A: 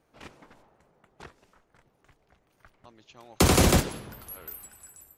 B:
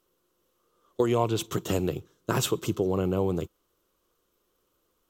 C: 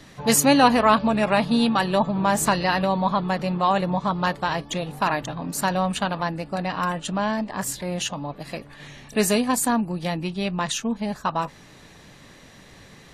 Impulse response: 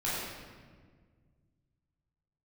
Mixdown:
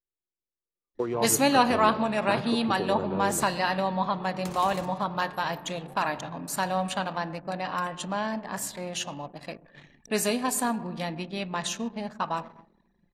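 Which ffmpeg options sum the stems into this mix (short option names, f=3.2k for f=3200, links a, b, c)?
-filter_complex "[0:a]acompressor=threshold=-22dB:ratio=4,adelay=1050,volume=-15dB[a];[1:a]lowpass=f=2.2k:w=0.5412,lowpass=f=2.2k:w=1.3066,volume=-4dB[b];[2:a]adelay=950,volume=-5dB,asplit=2[c][d];[d]volume=-20dB[e];[3:a]atrim=start_sample=2205[f];[e][f]afir=irnorm=-1:irlink=0[g];[a][b][c][g]amix=inputs=4:normalize=0,lowshelf=f=140:g=-10,anlmdn=0.0631"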